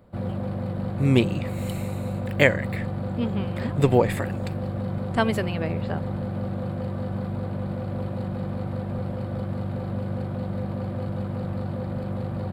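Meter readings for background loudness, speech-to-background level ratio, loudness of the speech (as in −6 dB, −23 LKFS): −30.0 LKFS, 5.0 dB, −25.0 LKFS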